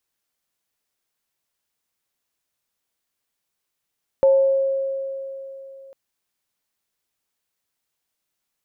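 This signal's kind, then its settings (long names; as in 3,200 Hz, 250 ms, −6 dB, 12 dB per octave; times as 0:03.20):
inharmonic partials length 1.70 s, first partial 541 Hz, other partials 880 Hz, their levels −18.5 dB, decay 3.30 s, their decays 0.81 s, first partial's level −10.5 dB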